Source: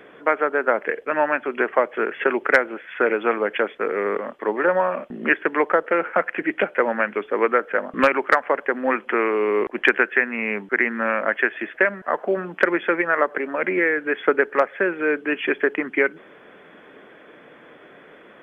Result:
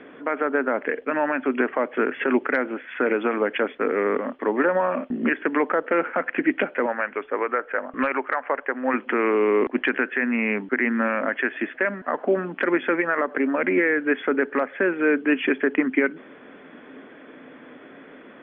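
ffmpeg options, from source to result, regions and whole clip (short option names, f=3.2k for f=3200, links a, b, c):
-filter_complex "[0:a]asettb=1/sr,asplit=3[a][b][c];[a]atrim=end=6.864[d];[b]atrim=start=6.86:end=8.94,asetpts=PTS-STARTPTS,afade=t=in:d=0.004:c=qsin,afade=t=out:st=2.076:d=0.004:c=qsin,lowpass=2.5k,equalizer=f=220:w=0.99:g=-14[e];[c]atrim=start=8.936[f];[d][e]acrossfade=d=0.004:c1=hsin:c2=qsin[g];[g][f]acrossfade=d=0.004:c1=qsin:c2=hsin,lowpass=f=3.8k:w=0.5412,lowpass=f=3.8k:w=1.3066,alimiter=limit=-12dB:level=0:latency=1:release=45,equalizer=f=260:t=o:w=0.34:g=12.5"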